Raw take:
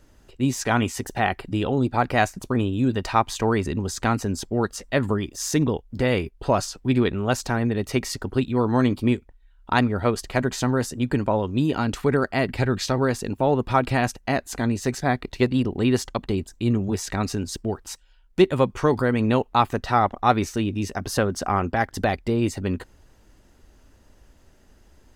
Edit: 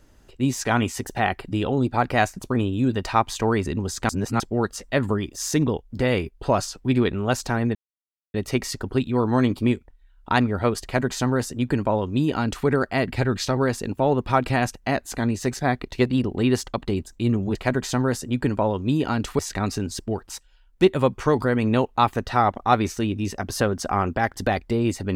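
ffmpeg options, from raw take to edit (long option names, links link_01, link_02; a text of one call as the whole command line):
ffmpeg -i in.wav -filter_complex "[0:a]asplit=6[link_01][link_02][link_03][link_04][link_05][link_06];[link_01]atrim=end=4.092[link_07];[link_02]atrim=start=4.088:end=4.402,asetpts=PTS-STARTPTS,areverse[link_08];[link_03]atrim=start=4.398:end=7.75,asetpts=PTS-STARTPTS,afade=type=out:start_time=3.348:duration=0.004:curve=hsin,apad=pad_dur=0.59[link_09];[link_04]atrim=start=7.75:end=16.962,asetpts=PTS-STARTPTS,afade=type=in:duration=0.004:curve=hsin[link_10];[link_05]atrim=start=10.238:end=12.082[link_11];[link_06]atrim=start=16.958[link_12];[link_07][link_08]acrossfade=duration=0.004:curve1=hsin:curve2=hsin[link_13];[link_09][link_10]concat=n=2:v=0:a=1[link_14];[link_13][link_14]acrossfade=duration=0.004:curve1=hsin:curve2=hsin[link_15];[link_15][link_11]acrossfade=duration=0.004:curve1=hsin:curve2=hsin[link_16];[link_16][link_12]acrossfade=duration=0.004:curve1=hsin:curve2=hsin" out.wav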